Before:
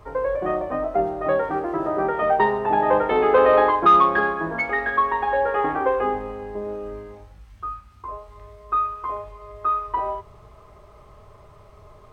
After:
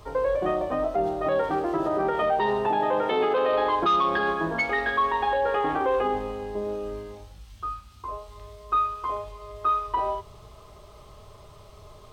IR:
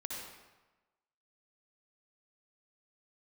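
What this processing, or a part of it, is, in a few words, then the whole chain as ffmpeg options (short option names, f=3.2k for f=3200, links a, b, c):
over-bright horn tweeter: -filter_complex "[0:a]highshelf=f=2.6k:t=q:w=1.5:g=7.5,alimiter=limit=-16dB:level=0:latency=1:release=51,asettb=1/sr,asplit=3[a][b][c];[a]atrim=end=2.694[d];[b]atrim=start=2.69:end=3.53,asetpts=PTS-STARTPTS,afade=t=in:d=0.004:c=qsin,afade=t=out:st=0.836:d=0.004:c=qsin,highpass=120[e];[c]atrim=start=3.526[f];[d][e]acrossfade=d=0.004:c1=hsin:c2=qsin[g];[g][f]acrossfade=d=0.004:c1=qsin:c2=hsin"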